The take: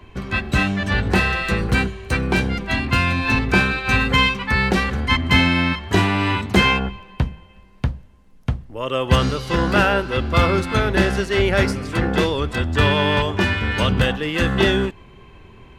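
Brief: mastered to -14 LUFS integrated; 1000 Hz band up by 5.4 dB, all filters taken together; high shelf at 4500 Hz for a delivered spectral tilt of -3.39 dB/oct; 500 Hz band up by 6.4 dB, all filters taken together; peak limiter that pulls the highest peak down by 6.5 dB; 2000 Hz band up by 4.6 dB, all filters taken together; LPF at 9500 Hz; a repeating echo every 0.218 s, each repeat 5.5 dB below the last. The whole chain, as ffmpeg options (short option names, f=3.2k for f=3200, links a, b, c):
-af "lowpass=9.5k,equalizer=f=500:t=o:g=7,equalizer=f=1k:t=o:g=3.5,equalizer=f=2k:t=o:g=3.5,highshelf=f=4.5k:g=5,alimiter=limit=-5dB:level=0:latency=1,aecho=1:1:218|436|654|872|1090|1308|1526:0.531|0.281|0.149|0.079|0.0419|0.0222|0.0118,volume=1.5dB"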